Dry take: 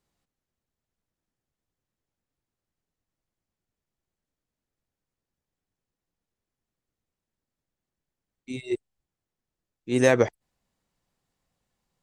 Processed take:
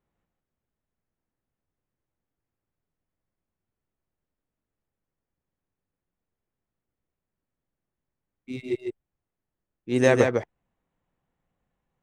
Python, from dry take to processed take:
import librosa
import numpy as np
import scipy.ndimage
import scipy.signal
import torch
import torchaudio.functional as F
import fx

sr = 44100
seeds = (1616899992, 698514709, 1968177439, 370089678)

p1 = fx.wiener(x, sr, points=9)
p2 = fx.high_shelf(p1, sr, hz=7800.0, db=-7.5)
y = p2 + fx.echo_single(p2, sr, ms=151, db=-4.5, dry=0)